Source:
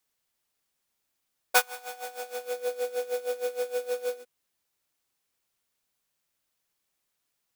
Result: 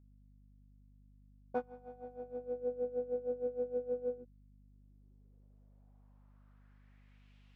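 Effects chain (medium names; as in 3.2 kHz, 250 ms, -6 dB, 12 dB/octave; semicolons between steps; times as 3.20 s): low-pass sweep 200 Hz -> 2.8 kHz, 4.49–7.34 s; hum 50 Hz, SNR 19 dB; trim +9 dB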